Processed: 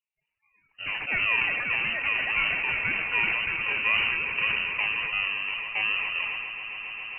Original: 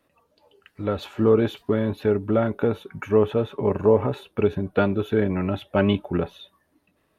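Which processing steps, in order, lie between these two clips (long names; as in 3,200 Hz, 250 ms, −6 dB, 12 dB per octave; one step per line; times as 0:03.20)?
samples in bit-reversed order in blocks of 32 samples
noise reduction from a noise print of the clip's start 21 dB
tape wow and flutter 150 cents
on a send: echo that builds up and dies away 136 ms, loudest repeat 8, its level −17 dB
on the sum: delay with pitch and tempo change per echo 276 ms, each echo +7 semitones, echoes 2
voice inversion scrambler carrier 2,900 Hz
level that may fall only so fast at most 24 dB per second
level −8 dB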